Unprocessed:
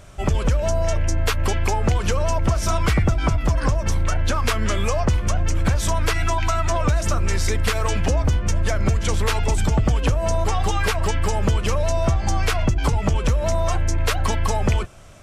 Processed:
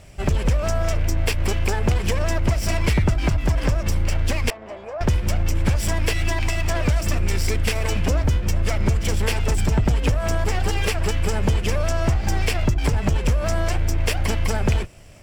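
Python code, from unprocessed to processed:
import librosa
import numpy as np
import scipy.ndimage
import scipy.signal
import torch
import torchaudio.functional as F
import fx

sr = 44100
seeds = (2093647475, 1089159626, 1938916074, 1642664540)

y = fx.lower_of_two(x, sr, delay_ms=0.38)
y = fx.bandpass_q(y, sr, hz=720.0, q=2.2, at=(4.5, 5.01))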